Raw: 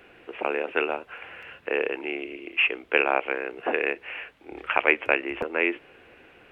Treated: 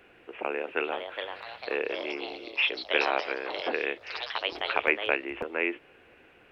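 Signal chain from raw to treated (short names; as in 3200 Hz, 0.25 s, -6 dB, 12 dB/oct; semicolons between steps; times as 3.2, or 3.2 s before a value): echoes that change speed 0.573 s, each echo +4 st, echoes 3, each echo -6 dB; gain -4.5 dB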